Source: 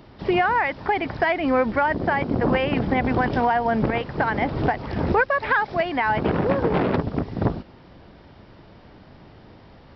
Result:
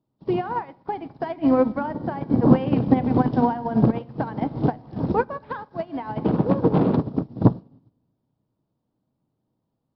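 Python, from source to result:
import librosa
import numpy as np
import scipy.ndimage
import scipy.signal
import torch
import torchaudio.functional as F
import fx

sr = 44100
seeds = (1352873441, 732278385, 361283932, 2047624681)

y = fx.graphic_eq_10(x, sr, hz=(125, 250, 500, 1000, 2000, 4000), db=(10, 11, 4, 7, -9, 5))
y = fx.room_shoebox(y, sr, seeds[0], volume_m3=1100.0, walls='mixed', distance_m=0.58)
y = fx.upward_expand(y, sr, threshold_db=-30.0, expansion=2.5)
y = F.gain(torch.from_numpy(y), -3.0).numpy()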